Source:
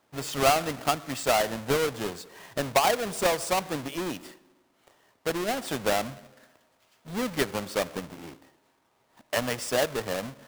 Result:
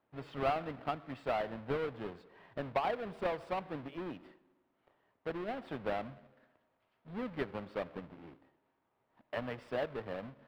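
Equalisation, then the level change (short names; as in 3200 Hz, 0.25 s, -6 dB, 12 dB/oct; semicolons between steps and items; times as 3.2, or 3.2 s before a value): air absorption 430 m; -8.5 dB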